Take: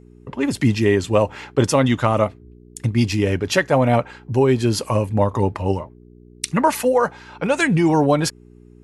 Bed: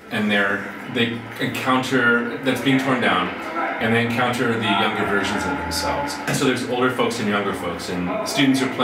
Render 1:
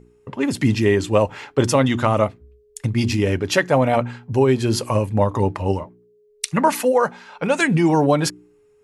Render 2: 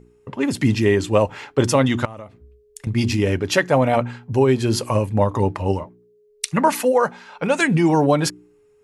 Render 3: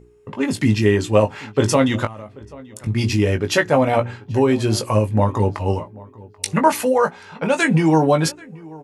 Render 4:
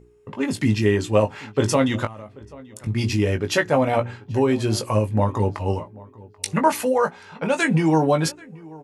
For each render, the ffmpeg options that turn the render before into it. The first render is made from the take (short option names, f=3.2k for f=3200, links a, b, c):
-af "bandreject=f=60:t=h:w=4,bandreject=f=120:t=h:w=4,bandreject=f=180:t=h:w=4,bandreject=f=240:t=h:w=4,bandreject=f=300:t=h:w=4,bandreject=f=360:t=h:w=4"
-filter_complex "[0:a]asettb=1/sr,asplit=3[a][b][c];[a]atrim=end=2.054[d];[b]atrim=start=2.05:end=2.87,asetpts=PTS-STARTPTS,afade=t=in:d=0.004:c=qsin,afade=t=out:st=0.816:d=0.004:c=qsin,acompressor=threshold=-32dB:ratio=10:attack=3.2:release=140:knee=1:detection=peak[e];[c]atrim=start=2.866[f];[d][e]acrossfade=d=0.004:c1=hsin:c2=qsin[g];[g][f]acrossfade=d=0.004:c1=qsin:c2=hsin"
-filter_complex "[0:a]asplit=2[a][b];[b]adelay=19,volume=-7dB[c];[a][c]amix=inputs=2:normalize=0,asplit=2[d][e];[e]adelay=785,lowpass=f=2k:p=1,volume=-22dB,asplit=2[f][g];[g]adelay=785,lowpass=f=2k:p=1,volume=0.22[h];[d][f][h]amix=inputs=3:normalize=0"
-af "volume=-3dB"